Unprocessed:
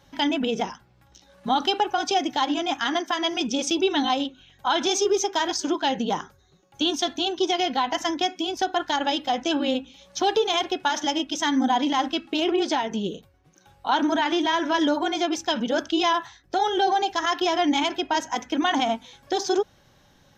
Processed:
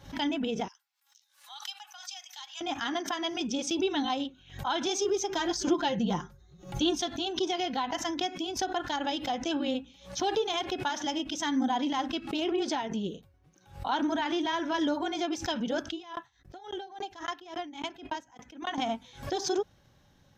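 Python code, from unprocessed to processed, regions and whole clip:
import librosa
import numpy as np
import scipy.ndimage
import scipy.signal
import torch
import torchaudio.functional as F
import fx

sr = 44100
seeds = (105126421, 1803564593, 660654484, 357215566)

y = fx.chain(x, sr, fx.steep_highpass(hz=760.0, slope=36),
    fx.differentiator(),
    fx.transformer_sat(knee_hz=2200.0), at=(0.68, 2.61))
y = fx.chain(y, sr, fx.low_shelf(hz=170.0, db=11.0),
    fx.comb(ms=5.7, depth=0.59), at=(5.29, 7.02))
y = fx.chain(y, sr, fx.peak_eq(hz=5000.0, db=-3.0, octaves=0.34),
    fx.tremolo_decay(direction='decaying', hz=3.6, depth_db=38), at=(15.89, 18.78))
y = fx.peak_eq(y, sr, hz=79.0, db=6.5, octaves=2.8)
y = fx.pre_swell(y, sr, db_per_s=130.0)
y = y * librosa.db_to_amplitude(-8.0)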